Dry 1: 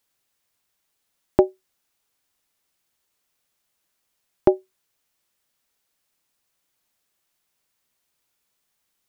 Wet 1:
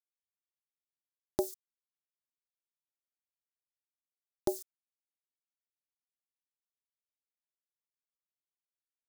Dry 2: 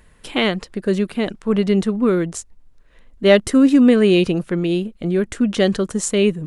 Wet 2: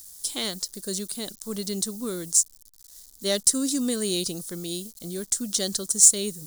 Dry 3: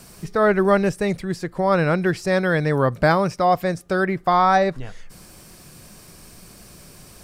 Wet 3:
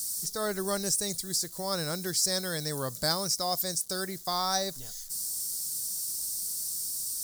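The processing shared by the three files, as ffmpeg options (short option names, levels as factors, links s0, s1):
-af "acrusher=bits=8:mix=0:aa=0.000001,aexciter=amount=10.3:drive=10:freq=4100,volume=0.178"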